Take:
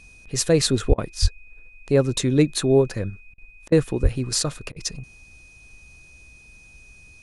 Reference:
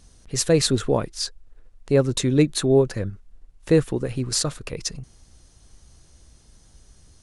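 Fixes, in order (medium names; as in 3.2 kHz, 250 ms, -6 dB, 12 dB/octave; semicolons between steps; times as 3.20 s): band-stop 2.5 kHz, Q 30; 0.88–1.00 s: high-pass 140 Hz 24 dB/octave; 1.21–1.33 s: high-pass 140 Hz 24 dB/octave; 4.02–4.14 s: high-pass 140 Hz 24 dB/octave; interpolate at 0.94/3.34/3.68/4.72 s, 39 ms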